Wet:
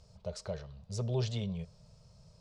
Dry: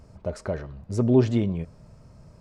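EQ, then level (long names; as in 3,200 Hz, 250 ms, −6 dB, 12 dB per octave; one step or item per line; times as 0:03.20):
Chebyshev band-stop filter 190–450 Hz, order 2
high-frequency loss of the air 56 metres
high shelf with overshoot 2,700 Hz +11.5 dB, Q 1.5
−8.5 dB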